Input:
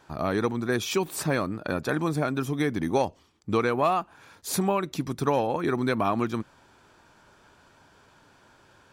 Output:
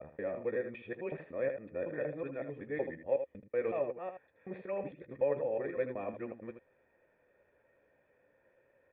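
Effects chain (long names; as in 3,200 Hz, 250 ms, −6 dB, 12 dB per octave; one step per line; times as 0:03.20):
reversed piece by piece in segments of 186 ms
formant resonators in series e
ambience of single reflections 14 ms −11.5 dB, 79 ms −9 dB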